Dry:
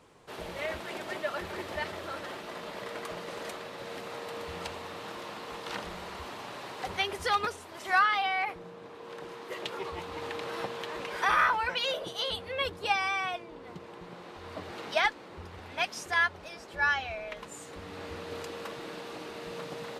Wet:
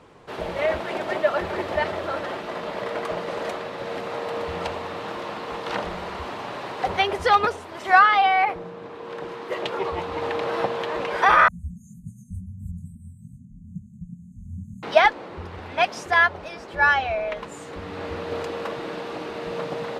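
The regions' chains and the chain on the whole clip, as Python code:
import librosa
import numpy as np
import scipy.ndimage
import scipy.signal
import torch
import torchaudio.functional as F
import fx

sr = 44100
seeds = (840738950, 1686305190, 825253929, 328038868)

y = fx.chain(x, sr, fx.brickwall_bandstop(low_hz=240.0, high_hz=6300.0),
    fx.low_shelf(hz=400.0, db=10.5),
    fx.detune_double(cents=59), at=(11.48, 14.83))
y = fx.lowpass(y, sr, hz=2700.0, slope=6)
y = fx.dynamic_eq(y, sr, hz=650.0, q=1.4, threshold_db=-44.0, ratio=4.0, max_db=5)
y = y * 10.0 ** (9.0 / 20.0)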